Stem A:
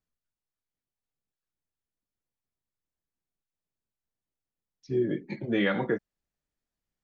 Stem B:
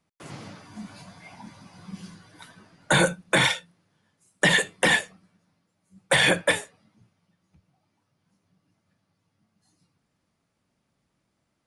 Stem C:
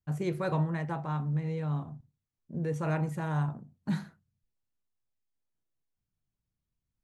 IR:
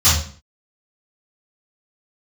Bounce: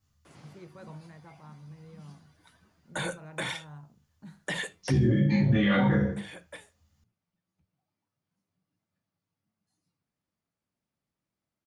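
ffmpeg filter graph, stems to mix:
-filter_complex "[0:a]alimiter=limit=-19.5dB:level=0:latency=1,volume=2.5dB,asplit=3[a][b][c];[b]volume=-11.5dB[d];[1:a]adelay=50,volume=-13.5dB[e];[2:a]adelay=350,volume=-17dB[f];[c]apad=whole_len=516540[g];[e][g]sidechaincompress=threshold=-37dB:ratio=12:attack=16:release=1500[h];[3:a]atrim=start_sample=2205[i];[d][i]afir=irnorm=-1:irlink=0[j];[a][h][f][j]amix=inputs=4:normalize=0,alimiter=limit=-15.5dB:level=0:latency=1:release=144"

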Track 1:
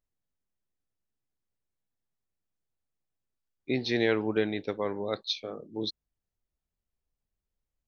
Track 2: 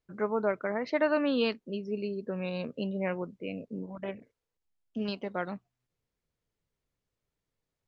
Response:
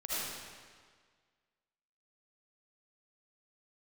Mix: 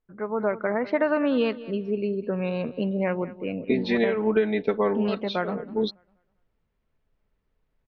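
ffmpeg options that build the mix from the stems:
-filter_complex "[0:a]aecho=1:1:4.6:0.91,acompressor=threshold=-26dB:ratio=5,volume=-1dB[a];[1:a]acompressor=threshold=-25dB:ratio=6,volume=-2dB,asplit=3[b][c][d];[c]volume=-17dB[e];[d]apad=whole_len=347402[f];[a][f]sidechaincompress=threshold=-39dB:ratio=8:attack=39:release=282[g];[e]aecho=0:1:200|400|600|800|1000:1|0.32|0.102|0.0328|0.0105[h];[g][b][h]amix=inputs=3:normalize=0,lowpass=2.4k,dynaudnorm=f=140:g=5:m=9dB"

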